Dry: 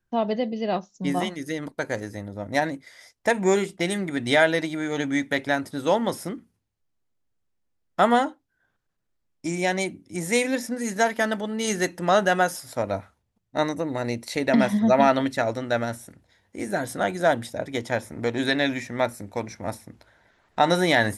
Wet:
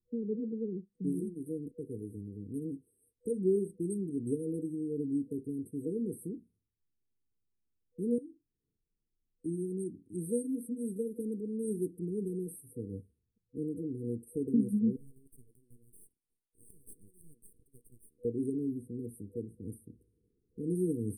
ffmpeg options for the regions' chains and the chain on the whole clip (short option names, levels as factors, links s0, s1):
-filter_complex "[0:a]asettb=1/sr,asplit=3[s0][s1][s2];[s0]atrim=end=8.184[s3];[s1]atrim=start=8.18:end=9.46,asetpts=PTS-STARTPTS,afade=t=in:d=0.004:c=qsin,afade=t=out:st=1.276:d=0.004:c=qsin,afreqshift=17,acompressor=threshold=0.0158:ratio=2.5:attack=3.2:release=140:knee=1:detection=peak,asplit=2[s4][s5];[s5]adelay=39,volume=0.211[s6];[s4][s6]amix=inputs=2:normalize=0,atrim=end_sample=56448[s7];[s2]atrim=start=9.456[s8];[s3][s7]acrossfade=d=0.004:c1=hsin:c2=qsin[s9];[s9][s8]acrossfade=d=0.004:c1=qsin:c2=hsin,asettb=1/sr,asplit=3[s10][s11][s12];[s10]atrim=end=14.964[s13];[s11]atrim=start=14.96:end=18.25,asetpts=PTS-STARTPTS,afade=t=in:d=0.004:c=qsin,afade=t=out:st=3.286:d=0.004:c=qsin,aderivative,aeval=exprs='max(val(0),0)':c=same[s14];[s12]atrim=start=18.246[s15];[s13][s14]acrossfade=d=0.004:c1=hsin:c2=qsin[s16];[s16][s15]acrossfade=d=0.004:c1=qsin:c2=hsin,afftfilt=real='re*(1-between(b*sr/4096,490,8200))':imag='im*(1-between(b*sr/4096,490,8200))':win_size=4096:overlap=0.75,highshelf=f=8300:g=-5.5,volume=0.447"